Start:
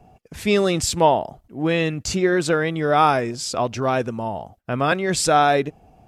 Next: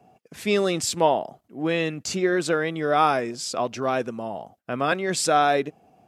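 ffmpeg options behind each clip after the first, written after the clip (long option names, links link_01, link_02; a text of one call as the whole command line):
ffmpeg -i in.wav -af "highpass=180,bandreject=frequency=890:width=18,volume=-3dB" out.wav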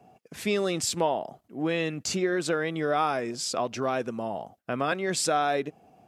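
ffmpeg -i in.wav -af "acompressor=threshold=-26dB:ratio=2" out.wav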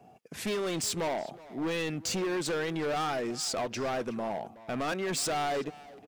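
ffmpeg -i in.wav -filter_complex "[0:a]volume=28.5dB,asoftclip=hard,volume=-28.5dB,asplit=2[link_01][link_02];[link_02]adelay=370,highpass=300,lowpass=3400,asoftclip=type=hard:threshold=-36.5dB,volume=-12dB[link_03];[link_01][link_03]amix=inputs=2:normalize=0" out.wav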